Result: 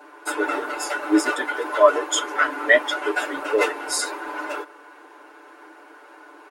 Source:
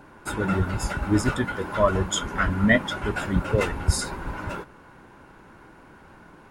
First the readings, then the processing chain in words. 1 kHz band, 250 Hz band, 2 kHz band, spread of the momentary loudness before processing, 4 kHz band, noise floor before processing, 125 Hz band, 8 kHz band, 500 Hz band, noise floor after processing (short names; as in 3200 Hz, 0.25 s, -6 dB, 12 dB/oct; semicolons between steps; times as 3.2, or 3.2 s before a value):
+5.0 dB, -1.5 dB, +5.5 dB, 12 LU, +4.0 dB, -50 dBFS, under -35 dB, +4.5 dB, +5.5 dB, -47 dBFS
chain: elliptic high-pass 320 Hz, stop band 40 dB; comb 6.8 ms, depth 95%; gain +2.5 dB